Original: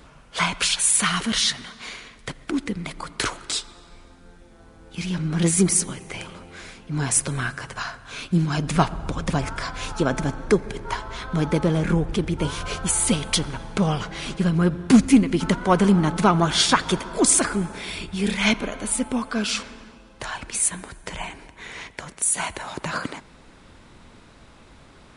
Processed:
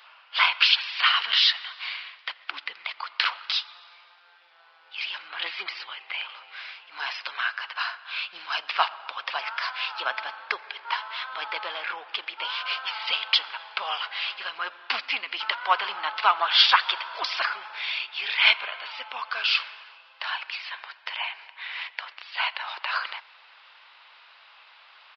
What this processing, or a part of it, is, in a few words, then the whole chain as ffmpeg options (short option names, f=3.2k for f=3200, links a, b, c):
musical greeting card: -filter_complex "[0:a]asettb=1/sr,asplit=3[a][b][c];[a]atrim=end=5.284[d];[b]atrim=start=5.28:end=6.29,asetpts=PTS-STARTPTS,afade=t=in:d=0.004:c=qsin,afade=t=out:st=1.006:d=0.004:c=qsin,lowpass=f=4.4k:w=0.5412,lowpass=f=4.4k:w=1.3066[e];[c]atrim=start=6.286[f];[d][e]acrossfade=d=0.004:c1=hsin:c2=qsin[g];[g][f]acrossfade=d=0.004:c1=qsin:c2=hsin,aresample=11025,aresample=44100,highpass=f=860:w=0.5412,highpass=f=860:w=1.3066,equalizer=f=2.8k:t=o:w=0.47:g=7,volume=1dB"